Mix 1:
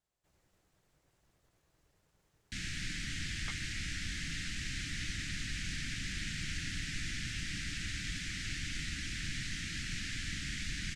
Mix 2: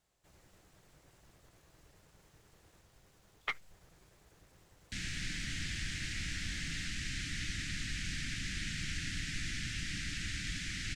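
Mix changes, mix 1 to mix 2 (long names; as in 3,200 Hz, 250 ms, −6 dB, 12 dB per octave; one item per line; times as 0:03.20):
speech +10.0 dB
background: entry +2.40 s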